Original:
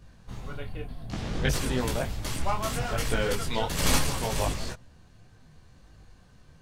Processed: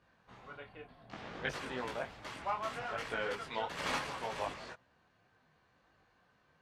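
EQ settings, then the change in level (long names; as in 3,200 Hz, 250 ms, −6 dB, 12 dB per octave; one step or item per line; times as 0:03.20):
resonant band-pass 1,800 Hz, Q 0.58
high-shelf EQ 2,700 Hz −11 dB
−2.0 dB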